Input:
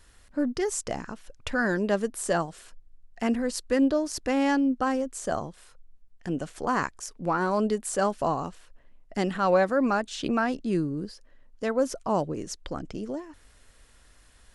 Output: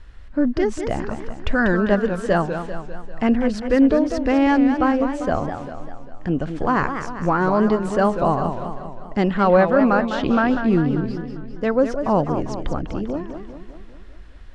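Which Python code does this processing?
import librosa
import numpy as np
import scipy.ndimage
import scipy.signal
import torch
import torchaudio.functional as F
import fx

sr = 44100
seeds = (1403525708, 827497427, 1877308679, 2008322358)

y = scipy.signal.sosfilt(scipy.signal.butter(2, 3200.0, 'lowpass', fs=sr, output='sos'), x)
y = fx.low_shelf(y, sr, hz=110.0, db=11.5)
y = fx.echo_warbled(y, sr, ms=198, feedback_pct=56, rate_hz=2.8, cents=192, wet_db=-8.5)
y = y * 10.0 ** (6.0 / 20.0)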